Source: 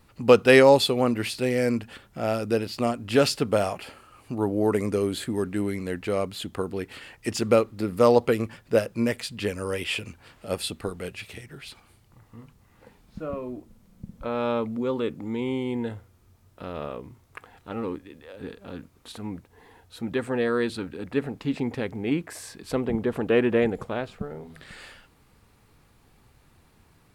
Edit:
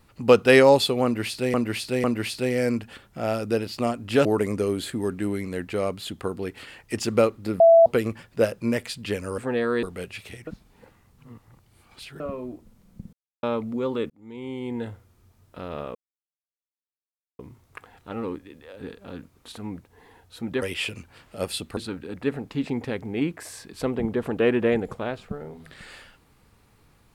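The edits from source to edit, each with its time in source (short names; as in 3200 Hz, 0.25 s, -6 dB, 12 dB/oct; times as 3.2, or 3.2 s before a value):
1.04–1.54 loop, 3 plays
3.25–4.59 cut
7.94–8.2 bleep 665 Hz -9.5 dBFS
9.72–10.87 swap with 20.22–20.67
11.51–13.24 reverse
14.17–14.47 mute
15.14–15.92 fade in
16.99 insert silence 1.44 s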